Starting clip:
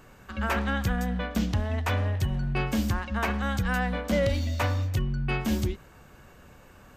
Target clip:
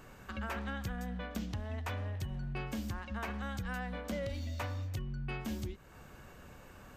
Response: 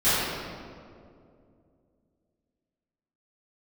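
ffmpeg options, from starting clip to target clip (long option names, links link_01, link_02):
-af "acompressor=threshold=-39dB:ratio=2.5,volume=-1.5dB"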